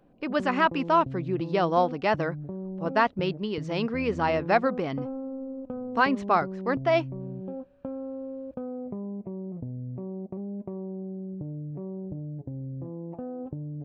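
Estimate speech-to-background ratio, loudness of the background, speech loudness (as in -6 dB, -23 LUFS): 10.5 dB, -37.0 LUFS, -26.5 LUFS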